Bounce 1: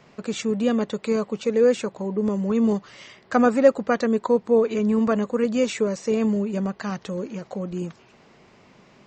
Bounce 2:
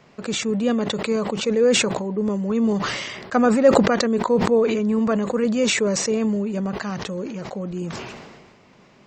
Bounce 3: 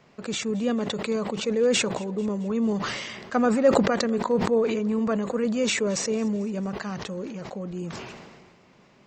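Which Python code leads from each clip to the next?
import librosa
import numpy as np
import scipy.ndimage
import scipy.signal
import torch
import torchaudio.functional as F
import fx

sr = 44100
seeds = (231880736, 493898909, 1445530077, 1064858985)

y1 = fx.sustainer(x, sr, db_per_s=35.0)
y2 = fx.echo_feedback(y1, sr, ms=221, feedback_pct=52, wet_db=-22.0)
y2 = F.gain(torch.from_numpy(y2), -4.5).numpy()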